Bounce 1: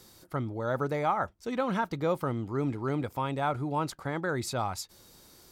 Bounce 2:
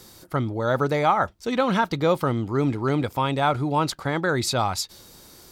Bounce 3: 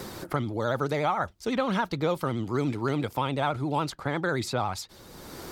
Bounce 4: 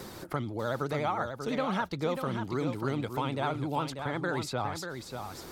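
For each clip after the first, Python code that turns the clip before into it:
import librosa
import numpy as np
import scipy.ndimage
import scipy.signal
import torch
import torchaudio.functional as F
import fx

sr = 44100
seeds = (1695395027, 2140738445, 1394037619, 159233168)

y1 = fx.dynamic_eq(x, sr, hz=3900.0, q=1.1, threshold_db=-54.0, ratio=4.0, max_db=6)
y1 = y1 * 10.0 ** (7.5 / 20.0)
y2 = fx.vibrato(y1, sr, rate_hz=14.0, depth_cents=79.0)
y2 = fx.band_squash(y2, sr, depth_pct=70)
y2 = y2 * 10.0 ** (-5.5 / 20.0)
y3 = y2 + 10.0 ** (-7.0 / 20.0) * np.pad(y2, (int(590 * sr / 1000.0), 0))[:len(y2)]
y3 = y3 * 10.0 ** (-4.5 / 20.0)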